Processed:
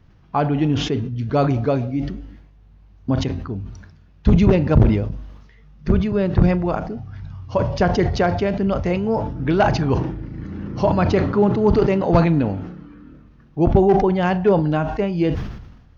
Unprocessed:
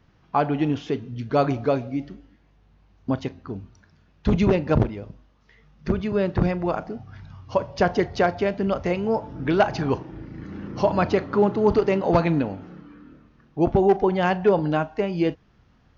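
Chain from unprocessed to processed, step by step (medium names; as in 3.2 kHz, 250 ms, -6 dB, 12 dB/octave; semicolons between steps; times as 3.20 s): bass shelf 170 Hz +10.5 dB; decay stretcher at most 57 dB/s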